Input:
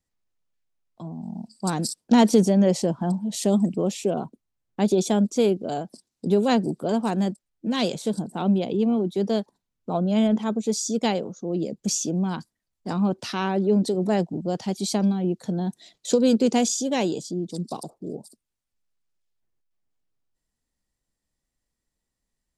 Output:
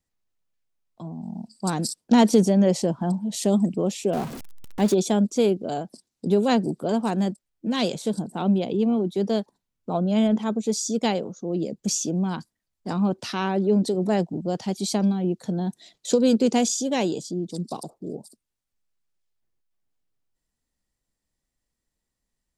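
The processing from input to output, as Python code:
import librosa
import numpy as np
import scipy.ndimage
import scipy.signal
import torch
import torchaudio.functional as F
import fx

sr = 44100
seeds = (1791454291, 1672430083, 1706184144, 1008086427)

y = fx.zero_step(x, sr, step_db=-30.5, at=(4.13, 4.94))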